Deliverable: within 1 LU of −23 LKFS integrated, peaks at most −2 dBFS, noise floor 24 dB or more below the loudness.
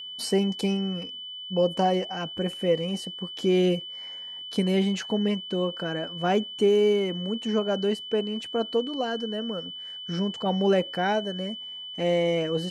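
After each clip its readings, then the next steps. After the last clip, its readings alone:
interfering tone 3,000 Hz; level of the tone −36 dBFS; integrated loudness −27.0 LKFS; sample peak −11.0 dBFS; target loudness −23.0 LKFS
→ notch filter 3,000 Hz, Q 30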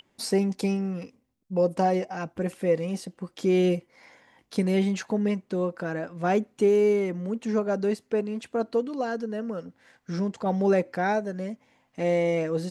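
interfering tone none found; integrated loudness −27.0 LKFS; sample peak −11.5 dBFS; target loudness −23.0 LKFS
→ level +4 dB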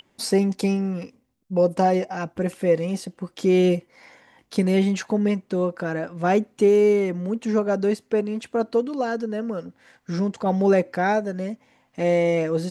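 integrated loudness −23.0 LKFS; sample peak −7.5 dBFS; background noise floor −66 dBFS

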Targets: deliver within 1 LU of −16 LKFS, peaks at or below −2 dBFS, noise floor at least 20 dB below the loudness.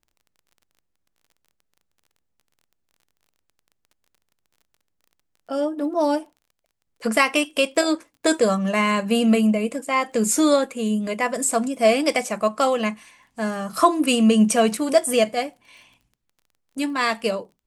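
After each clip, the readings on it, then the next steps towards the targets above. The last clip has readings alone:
crackle rate 22 per second; integrated loudness −21.0 LKFS; sample peak −3.5 dBFS; target loudness −16.0 LKFS
→ click removal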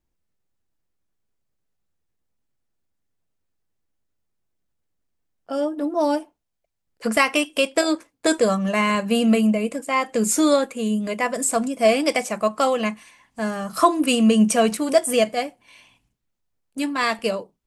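crackle rate 0 per second; integrated loudness −21.0 LKFS; sample peak −3.5 dBFS; target loudness −16.0 LKFS
→ level +5 dB
brickwall limiter −2 dBFS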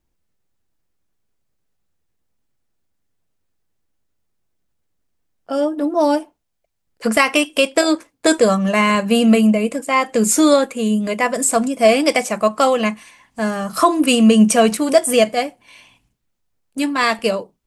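integrated loudness −16.5 LKFS; sample peak −2.0 dBFS; background noise floor −71 dBFS

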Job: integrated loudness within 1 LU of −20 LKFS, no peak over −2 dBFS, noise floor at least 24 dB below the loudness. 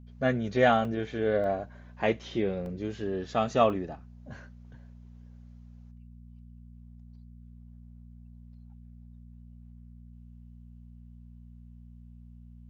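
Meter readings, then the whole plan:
number of dropouts 4; longest dropout 1.5 ms; mains hum 60 Hz; hum harmonics up to 240 Hz; level of the hum −47 dBFS; integrated loudness −28.5 LKFS; sample peak −8.5 dBFS; target loudness −20.0 LKFS
→ repair the gap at 0:00.85/0:01.44/0:02.66/0:03.70, 1.5 ms
hum removal 60 Hz, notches 4
level +8.5 dB
brickwall limiter −2 dBFS

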